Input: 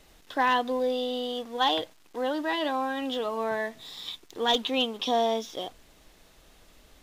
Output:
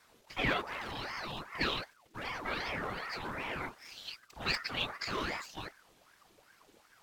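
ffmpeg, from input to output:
ffmpeg -i in.wav -filter_complex "[0:a]afftfilt=real='hypot(re,im)*cos(2*PI*random(0))':imag='hypot(re,im)*sin(2*PI*random(1))':win_size=512:overlap=0.75,acrossover=split=210|690|2900[link_01][link_02][link_03][link_04];[link_02]aeval=exprs='0.0106*(abs(mod(val(0)/0.0106+3,4)-2)-1)':channel_layout=same[link_05];[link_01][link_05][link_03][link_04]amix=inputs=4:normalize=0,acrossover=split=460|3000[link_06][link_07][link_08];[link_06]acompressor=threshold=-38dB:ratio=6[link_09];[link_09][link_07][link_08]amix=inputs=3:normalize=0,bandreject=frequency=60:width_type=h:width=6,bandreject=frequency=120:width_type=h:width=6,aeval=exprs='val(0)*sin(2*PI*960*n/s+960*0.7/2.6*sin(2*PI*2.6*n/s))':channel_layout=same,volume=2dB" out.wav

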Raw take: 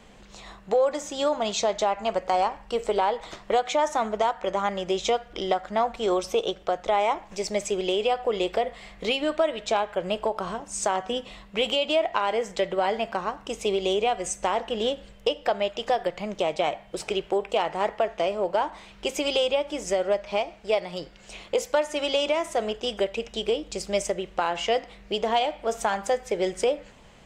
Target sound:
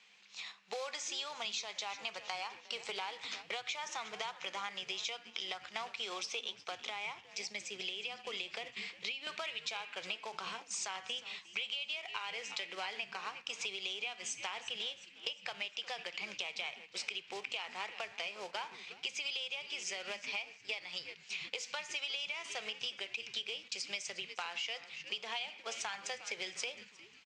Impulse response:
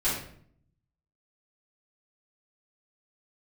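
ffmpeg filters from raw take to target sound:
-filter_complex "[0:a]acrusher=bits=6:mode=log:mix=0:aa=0.000001,aderivative,asplit=6[link_01][link_02][link_03][link_04][link_05][link_06];[link_02]adelay=356,afreqshift=-150,volume=-18.5dB[link_07];[link_03]adelay=712,afreqshift=-300,volume=-23.9dB[link_08];[link_04]adelay=1068,afreqshift=-450,volume=-29.2dB[link_09];[link_05]adelay=1424,afreqshift=-600,volume=-34.6dB[link_10];[link_06]adelay=1780,afreqshift=-750,volume=-39.9dB[link_11];[link_01][link_07][link_08][link_09][link_10][link_11]amix=inputs=6:normalize=0,asettb=1/sr,asplit=3[link_12][link_13][link_14];[link_12]atrim=end=6.794[link_15];[link_13]atrim=start=6.79:end=9.27,asetpts=PTS-STARTPTS,afade=type=in:duration=0.004:curve=qsin,afade=type=out:start_time=2.476:duration=0.004:curve=qsin,acrossover=split=310[link_16][link_17];[link_17]acompressor=threshold=-43dB:ratio=4[link_18];[link_16][link_18]amix=inputs=2:normalize=0[link_19];[link_14]atrim=start=9.266[link_20];[link_15][link_19]acrossfade=duration=0.004:curve1=hsin:curve2=qsin[link_21];[link_21][link_20]acrossfade=duration=0.004:curve1=qsin:curve2=hsin,asoftclip=type=tanh:threshold=-23.5dB,highpass=frequency=120:width=0.5412,highpass=frequency=120:width=1.3066,equalizer=frequency=190:width_type=q:width=4:gain=4,equalizer=frequency=300:width_type=q:width=4:gain=-8,equalizer=frequency=610:width_type=q:width=4:gain=-8,equalizer=frequency=2400:width_type=q:width=4:gain=8,lowpass=frequency=5400:width=0.5412,lowpass=frequency=5400:width=1.3066,agate=range=-8dB:threshold=-53dB:ratio=16:detection=peak,acompressor=threshold=-46dB:ratio=6,volume=9dB"

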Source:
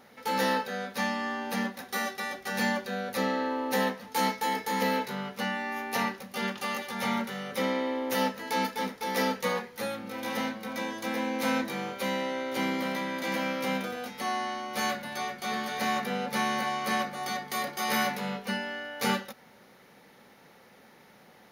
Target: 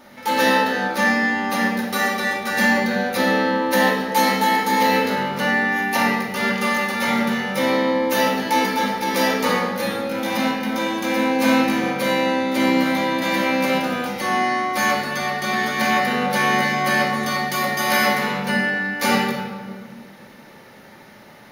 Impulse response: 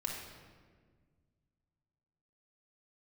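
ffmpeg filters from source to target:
-filter_complex "[1:a]atrim=start_sample=2205[link_01];[0:a][link_01]afir=irnorm=-1:irlink=0,volume=9dB"

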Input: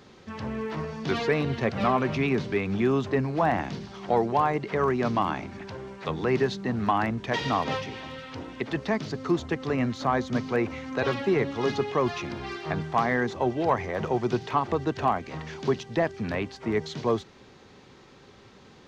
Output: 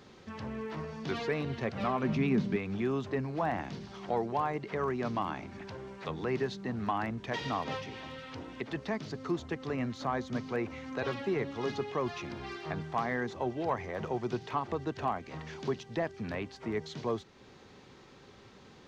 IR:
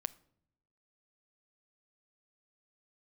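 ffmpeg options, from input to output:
-filter_complex "[0:a]asettb=1/sr,asplit=3[link_01][link_02][link_03];[link_01]atrim=end=2.034[link_04];[link_02]atrim=start=2.03:end=2.56,asetpts=PTS-STARTPTS,afade=type=in:duration=0.004:curve=qsin,afade=type=out:start_time=0.526:duration=0.004:curve=qsin,equalizer=frequency=200:width=1.9:gain=14[link_05];[link_03]atrim=start=2.556[link_06];[link_04][link_05]acrossfade=duration=0.004:curve1=hsin:curve2=qsin[link_07];[link_07][link_06]acrossfade=duration=0.004:curve1=qsin:curve2=hsin,asplit=2[link_08][link_09];[link_09]acompressor=threshold=-40dB:ratio=6,volume=0dB[link_10];[link_08][link_10]amix=inputs=2:normalize=0,volume=-9dB"

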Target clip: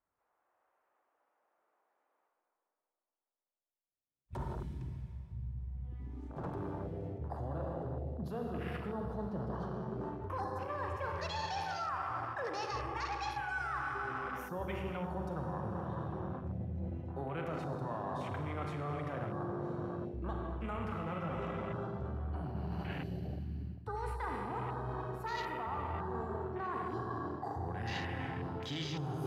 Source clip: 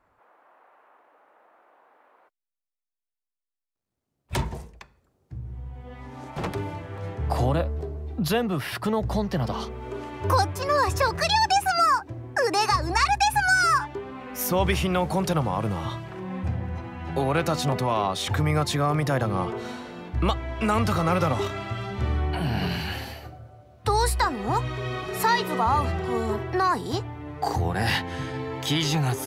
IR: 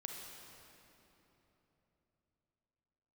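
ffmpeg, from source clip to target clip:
-filter_complex "[1:a]atrim=start_sample=2205[link_01];[0:a][link_01]afir=irnorm=-1:irlink=0,afwtdn=0.02,areverse,acompressor=threshold=-34dB:ratio=6,areverse,volume=-2dB"

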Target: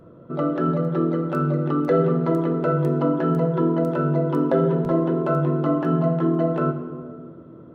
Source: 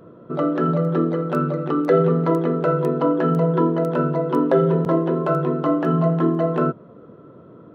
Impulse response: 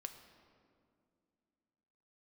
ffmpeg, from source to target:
-filter_complex "[0:a]lowshelf=frequency=120:gain=10.5[link_01];[1:a]atrim=start_sample=2205,asetrate=52920,aresample=44100[link_02];[link_01][link_02]afir=irnorm=-1:irlink=0,volume=2dB"

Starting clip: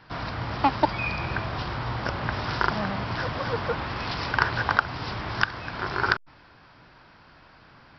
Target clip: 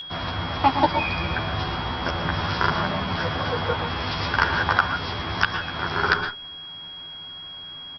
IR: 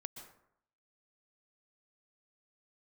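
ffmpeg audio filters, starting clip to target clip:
-filter_complex "[0:a]aeval=exprs='val(0)+0.0316*sin(2*PI*3300*n/s)':channel_layout=same,asplit=2[link_01][link_02];[link_02]adelay=12,volume=-2.5dB[link_03];[link_01][link_03]amix=inputs=2:normalize=0[link_04];[1:a]atrim=start_sample=2205,afade=type=out:start_time=0.24:duration=0.01,atrim=end_sample=11025,asetrate=48510,aresample=44100[link_05];[link_04][link_05]afir=irnorm=-1:irlink=0,volume=6dB"

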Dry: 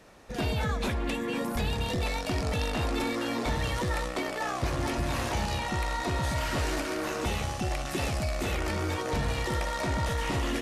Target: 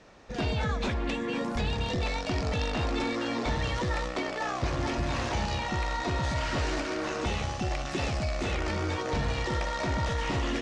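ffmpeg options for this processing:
ffmpeg -i in.wav -af "lowpass=frequency=6800:width=0.5412,lowpass=frequency=6800:width=1.3066" out.wav

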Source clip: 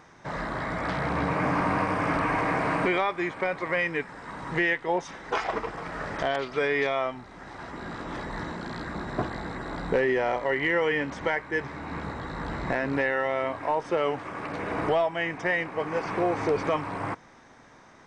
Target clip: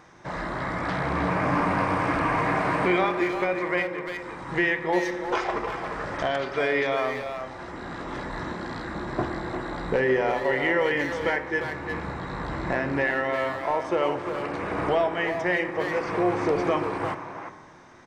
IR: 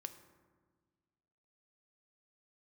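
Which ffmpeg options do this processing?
-filter_complex "[0:a]asettb=1/sr,asplit=3[link_01][link_02][link_03];[link_01]atrim=end=3.824[link_04];[link_02]atrim=start=3.82:end=4.49,asetpts=PTS-STARTPTS,afade=type=in:duration=0.004:curve=qsin,afade=type=out:start_time=0.666:duration=0.004:curve=qsin,acompressor=threshold=-35dB:ratio=6[link_05];[link_03]atrim=start=4.486[link_06];[link_04][link_05]acrossfade=duration=0.004:curve1=hsin:curve2=qsin[link_07];[link_07][link_06]acrossfade=duration=0.004:curve1=qsin:curve2=hsin,asplit=2[link_08][link_09];[link_09]adelay=350,highpass=300,lowpass=3400,asoftclip=type=hard:threshold=-22.5dB,volume=-6dB[link_10];[link_08][link_10]amix=inputs=2:normalize=0[link_11];[1:a]atrim=start_sample=2205[link_12];[link_11][link_12]afir=irnorm=-1:irlink=0,volume=5dB"

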